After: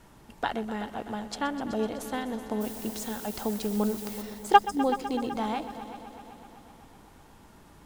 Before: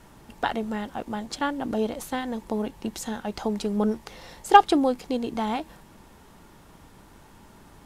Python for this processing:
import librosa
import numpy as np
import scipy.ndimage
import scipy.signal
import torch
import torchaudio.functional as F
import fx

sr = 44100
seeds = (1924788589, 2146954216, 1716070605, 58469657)

y = fx.dmg_noise_colour(x, sr, seeds[0], colour='blue', level_db=-40.0, at=(2.6, 4.21), fade=0.02)
y = fx.spec_erase(y, sr, start_s=4.58, length_s=0.21, low_hz=300.0, high_hz=4900.0)
y = fx.echo_heads(y, sr, ms=126, heads='all three', feedback_pct=62, wet_db=-17)
y = y * librosa.db_to_amplitude(-3.5)